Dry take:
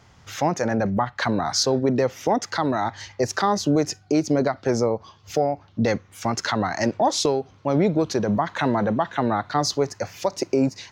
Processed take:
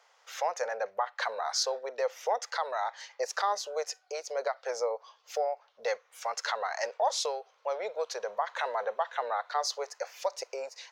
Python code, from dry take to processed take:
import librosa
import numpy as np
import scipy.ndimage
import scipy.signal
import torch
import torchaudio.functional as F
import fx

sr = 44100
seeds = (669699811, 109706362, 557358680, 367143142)

y = scipy.signal.sosfilt(scipy.signal.ellip(4, 1.0, 40, 480.0, 'highpass', fs=sr, output='sos'), x)
y = F.gain(torch.from_numpy(y), -6.5).numpy()